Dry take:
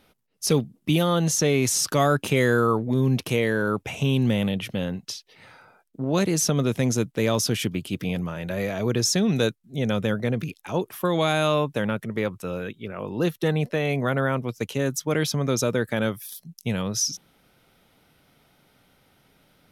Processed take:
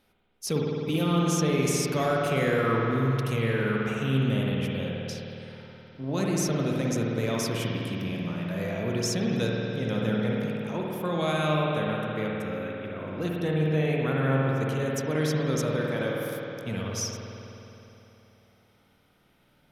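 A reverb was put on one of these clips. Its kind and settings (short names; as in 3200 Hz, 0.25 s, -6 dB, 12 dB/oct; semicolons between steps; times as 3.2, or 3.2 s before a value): spring tank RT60 3.3 s, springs 52 ms, chirp 60 ms, DRR -3 dB; gain -8 dB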